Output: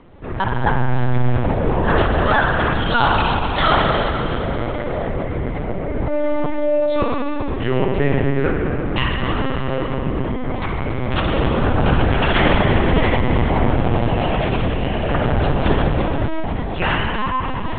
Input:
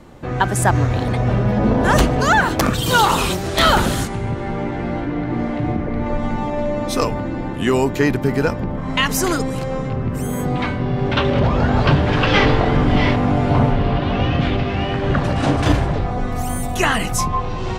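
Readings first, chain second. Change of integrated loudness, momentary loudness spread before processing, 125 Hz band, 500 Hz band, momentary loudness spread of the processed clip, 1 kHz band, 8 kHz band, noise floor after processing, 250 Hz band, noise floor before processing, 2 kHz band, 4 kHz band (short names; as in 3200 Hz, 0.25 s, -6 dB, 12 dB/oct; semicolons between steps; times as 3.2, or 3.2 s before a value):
-1.0 dB, 9 LU, -1.5 dB, +0.5 dB, 8 LU, -0.5 dB, under -40 dB, -23 dBFS, -2.0 dB, -25 dBFS, -0.5 dB, -2.5 dB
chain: spring tank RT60 3 s, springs 49 ms, chirp 25 ms, DRR -1 dB; LPC vocoder at 8 kHz pitch kept; gain -3.5 dB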